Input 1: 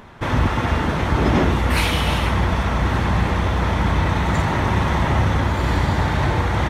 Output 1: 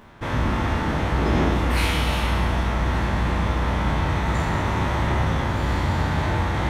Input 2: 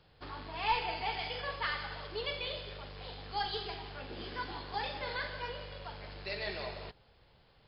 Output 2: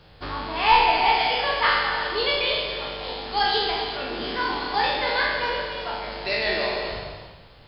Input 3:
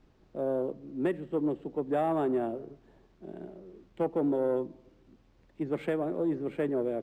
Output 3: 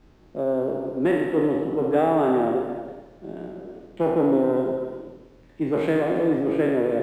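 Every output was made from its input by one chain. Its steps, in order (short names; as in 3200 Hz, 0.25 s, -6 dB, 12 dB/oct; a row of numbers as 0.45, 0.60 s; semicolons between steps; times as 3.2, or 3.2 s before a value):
spectral trails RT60 1.06 s; non-linear reverb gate 0.41 s flat, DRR 6 dB; match loudness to -23 LUFS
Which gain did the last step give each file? -7.0, +10.5, +5.5 dB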